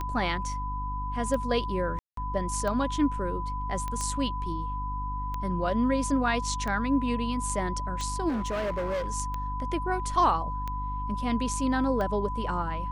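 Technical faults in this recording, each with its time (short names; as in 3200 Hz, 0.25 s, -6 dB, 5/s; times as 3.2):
hum 50 Hz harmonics 6 -34 dBFS
tick 45 rpm -20 dBFS
tone 1000 Hz -33 dBFS
1.99–2.17 gap 0.183 s
3.88 pop -20 dBFS
8.28–9.08 clipped -26.5 dBFS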